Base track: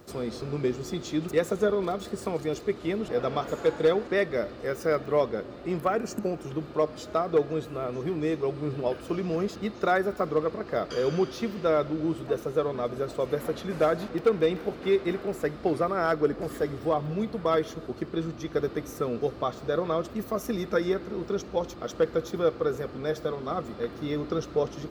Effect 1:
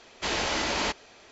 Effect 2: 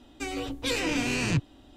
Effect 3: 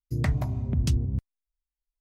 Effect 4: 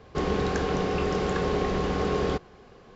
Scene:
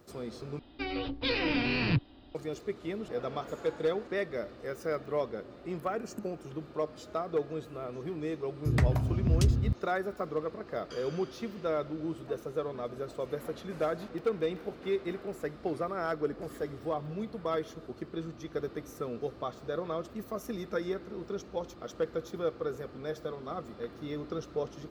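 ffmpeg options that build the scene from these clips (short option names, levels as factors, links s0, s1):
-filter_complex "[0:a]volume=0.422[s0];[2:a]aresample=11025,aresample=44100[s1];[s0]asplit=2[s2][s3];[s2]atrim=end=0.594[s4];[s1]atrim=end=1.76,asetpts=PTS-STARTPTS,volume=0.841[s5];[s3]atrim=start=2.346[s6];[3:a]atrim=end=2,asetpts=PTS-STARTPTS,volume=0.944,afade=t=in:d=0.004:c=hsin,afade=t=out:st=1.996:d=0.004:c=hsin,adelay=8540[s7];[s4][s5]acrossfade=d=0.004:c1=hsin:c2=hsin[s8];[s8][s6]acrossfade=d=0.004:c1=hsin:c2=hsin[s9];[s9][s7]amix=inputs=2:normalize=0"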